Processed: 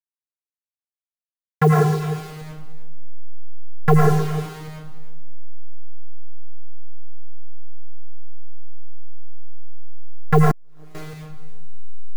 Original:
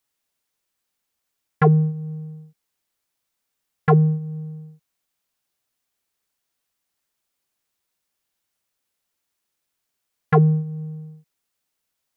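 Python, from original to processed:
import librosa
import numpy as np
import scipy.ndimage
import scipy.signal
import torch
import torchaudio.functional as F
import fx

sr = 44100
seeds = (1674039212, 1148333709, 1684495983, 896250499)

y = fx.delta_hold(x, sr, step_db=-32.0)
y = y + 10.0 ** (-14.0 / 20.0) * np.pad(y, (int(307 * sr / 1000.0), 0))[:len(y)]
y = fx.rev_freeverb(y, sr, rt60_s=0.82, hf_ratio=0.55, predelay_ms=65, drr_db=-3.0)
y = fx.transformer_sat(y, sr, knee_hz=360.0, at=(10.51, 10.95))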